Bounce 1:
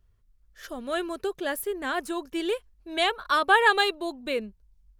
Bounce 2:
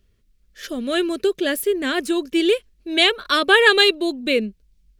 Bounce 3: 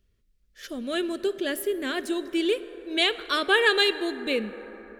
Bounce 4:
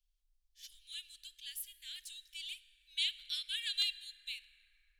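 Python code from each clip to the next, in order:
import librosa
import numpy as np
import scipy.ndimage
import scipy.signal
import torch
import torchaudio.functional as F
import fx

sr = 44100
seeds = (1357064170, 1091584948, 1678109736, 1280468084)

y1 = fx.curve_eq(x, sr, hz=(110.0, 220.0, 410.0, 590.0, 850.0, 2400.0, 4200.0, 12000.0), db=(0, 11, 9, 5, -5, 10, 10, 5))
y1 = y1 * librosa.db_to_amplitude(1.5)
y2 = fx.rev_plate(y1, sr, seeds[0], rt60_s=4.8, hf_ratio=0.3, predelay_ms=0, drr_db=13.0)
y2 = y2 * librosa.db_to_amplitude(-7.0)
y3 = scipy.signal.sosfilt(scipy.signal.cheby2(4, 60, [110.0, 960.0], 'bandstop', fs=sr, output='sos'), y2)
y3 = fx.buffer_crackle(y3, sr, first_s=0.72, period_s=0.62, block=64, kind='repeat')
y3 = y3 * librosa.db_to_amplitude(-7.5)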